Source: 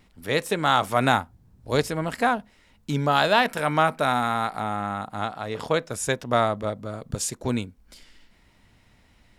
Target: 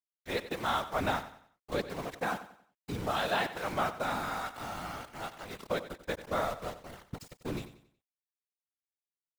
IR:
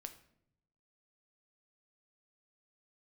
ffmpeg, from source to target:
-filter_complex "[0:a]acrossover=split=6100[a][b];[b]acompressor=threshold=-53dB:ratio=4:attack=1:release=60[c];[a][c]amix=inputs=2:normalize=0,aeval=exprs='val(0)*gte(abs(val(0)),0.0422)':c=same,afftfilt=real='hypot(re,im)*cos(2*PI*random(0))':imag='hypot(re,im)*sin(2*PI*random(1))':win_size=512:overlap=0.75,aecho=1:1:92|184|276|368:0.211|0.0782|0.0289|0.0107,volume=-4.5dB"

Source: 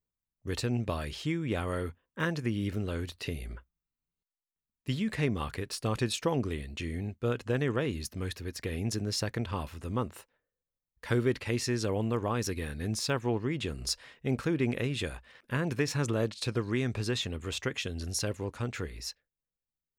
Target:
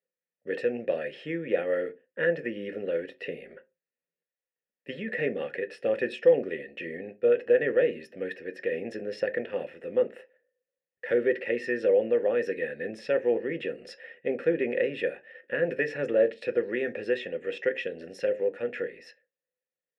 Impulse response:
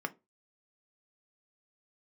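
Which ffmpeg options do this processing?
-filter_complex "[1:a]atrim=start_sample=2205[a];[0:a][a]afir=irnorm=-1:irlink=0,apsyclip=16dB,asplit=3[b][c][d];[b]bandpass=f=530:t=q:w=8,volume=0dB[e];[c]bandpass=f=1.84k:t=q:w=8,volume=-6dB[f];[d]bandpass=f=2.48k:t=q:w=8,volume=-9dB[g];[e][f][g]amix=inputs=3:normalize=0,volume=-3.5dB"

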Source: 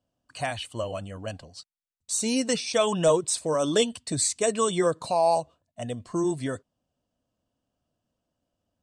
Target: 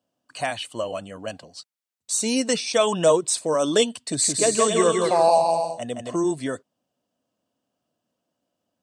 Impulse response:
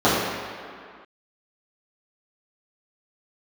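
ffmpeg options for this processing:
-filter_complex "[0:a]highpass=190,asettb=1/sr,asplit=3[a][b][c];[a]atrim=end=3.964[d];[b]atrim=start=3.96:end=6.16,asetpts=PTS-STARTPTS,afade=t=in:d=0.004:c=qsin,afade=t=out:st=2.196:d=0.004:c=qsin,aecho=1:1:170|272|333.2|369.9|392:0.631|0.398|0.251|0.158|0.1,atrim=end_sample=97020[e];[c]atrim=start=6.156[f];[d][e]acrossfade=d=0.004:c1=hsin:c2=qsin[g];[g][f]acrossfade=d=0.004:c1=qsin:c2=hsin,volume=3.5dB"

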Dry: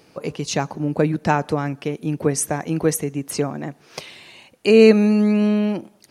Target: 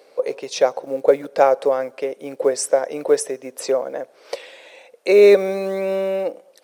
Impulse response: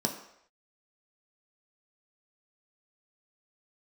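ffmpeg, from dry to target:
-af "acrusher=bits=9:mode=log:mix=0:aa=0.000001,asetrate=40517,aresample=44100,highpass=f=520:t=q:w=6.1,volume=-2dB"

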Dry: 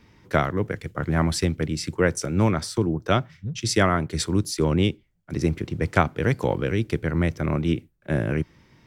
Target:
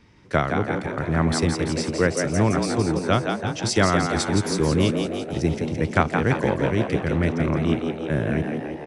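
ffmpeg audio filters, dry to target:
-filter_complex "[0:a]asplit=2[a][b];[b]aecho=0:1:334|668|1002|1336:0.15|0.0718|0.0345|0.0165[c];[a][c]amix=inputs=2:normalize=0,aresample=22050,aresample=44100,asplit=2[d][e];[e]asplit=8[f][g][h][i][j][k][l][m];[f]adelay=168,afreqshift=78,volume=-5.5dB[n];[g]adelay=336,afreqshift=156,volume=-10.2dB[o];[h]adelay=504,afreqshift=234,volume=-15dB[p];[i]adelay=672,afreqshift=312,volume=-19.7dB[q];[j]adelay=840,afreqshift=390,volume=-24.4dB[r];[k]adelay=1008,afreqshift=468,volume=-29.2dB[s];[l]adelay=1176,afreqshift=546,volume=-33.9dB[t];[m]adelay=1344,afreqshift=624,volume=-38.6dB[u];[n][o][p][q][r][s][t][u]amix=inputs=8:normalize=0[v];[d][v]amix=inputs=2:normalize=0"

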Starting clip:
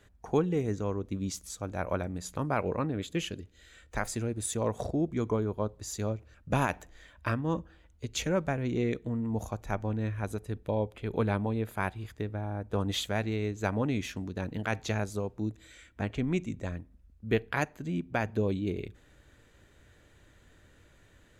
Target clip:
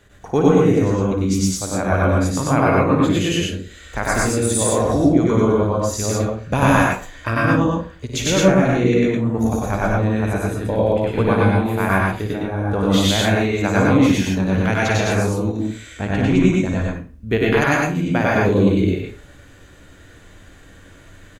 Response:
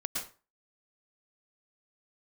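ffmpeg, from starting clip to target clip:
-filter_complex "[0:a]aecho=1:1:55.39|96.21:0.398|1[a];[1:a]atrim=start_sample=2205[b];[a][b]afir=irnorm=-1:irlink=0,volume=8.5dB"

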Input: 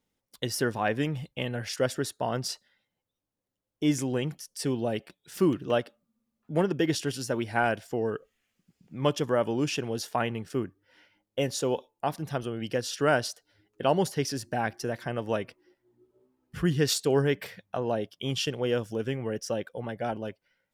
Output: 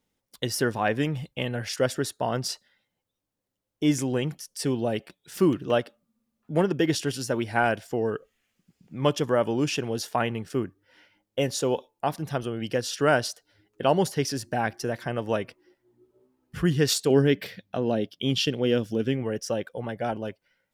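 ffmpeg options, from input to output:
-filter_complex "[0:a]asettb=1/sr,asplit=3[a][b][c];[a]atrim=end=17.104[d];[b]atrim=start=17.1:end=19.23,asetpts=PTS-STARTPTS,afade=t=in:d=0.004:c=qsin,afade=t=out:st=2.126:d=0.004:c=qsin,equalizer=f=250:t=o:w=1:g=6,equalizer=f=1k:t=o:w=1:g=-6,equalizer=f=4k:t=o:w=1:g=5,equalizer=f=8k:t=o:w=1:g=-5[e];[c]atrim=start=19.226[f];[d][e]acrossfade=d=0.004:c1=hsin:c2=qsin[g];[g][f]acrossfade=d=0.004:c1=qsin:c2=hsin,volume=2.5dB"

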